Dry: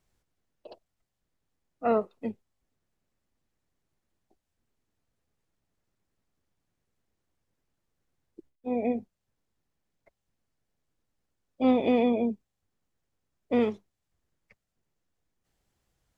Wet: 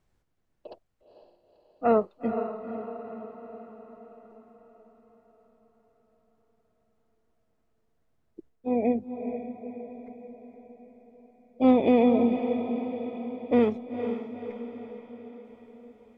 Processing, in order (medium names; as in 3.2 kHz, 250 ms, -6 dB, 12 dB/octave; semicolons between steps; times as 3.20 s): treble shelf 3 kHz -9.5 dB; on a send: echo that smears into a reverb 481 ms, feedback 56%, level -8 dB; on the sum: trim +3.5 dB